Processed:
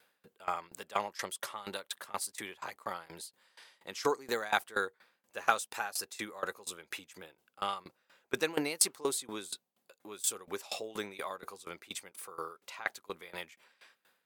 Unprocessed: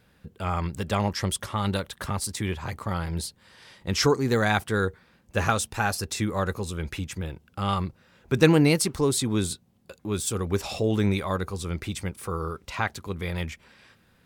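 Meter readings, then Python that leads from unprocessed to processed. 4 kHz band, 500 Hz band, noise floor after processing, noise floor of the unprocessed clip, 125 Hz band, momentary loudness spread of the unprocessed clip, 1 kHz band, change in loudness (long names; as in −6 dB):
−8.0 dB, −11.0 dB, −80 dBFS, −62 dBFS, −30.0 dB, 11 LU, −6.5 dB, −9.5 dB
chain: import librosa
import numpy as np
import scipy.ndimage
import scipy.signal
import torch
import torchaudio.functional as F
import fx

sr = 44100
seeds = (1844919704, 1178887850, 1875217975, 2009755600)

y = scipy.signal.sosfilt(scipy.signal.butter(2, 520.0, 'highpass', fs=sr, output='sos'), x)
y = fx.high_shelf(y, sr, hz=12000.0, db=7.5)
y = fx.notch(y, sr, hz=5500.0, q=28.0)
y = fx.tremolo_decay(y, sr, direction='decaying', hz=4.2, depth_db=21)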